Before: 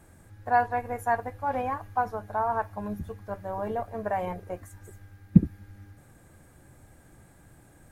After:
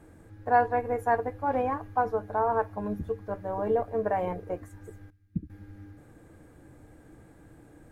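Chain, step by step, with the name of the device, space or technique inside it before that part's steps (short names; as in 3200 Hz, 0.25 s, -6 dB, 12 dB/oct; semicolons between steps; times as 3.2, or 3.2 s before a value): 5.1–5.5 passive tone stack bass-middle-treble 6-0-2; inside a helmet (high shelf 4400 Hz -9 dB; small resonant body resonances 310/450 Hz, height 10 dB, ringing for 55 ms)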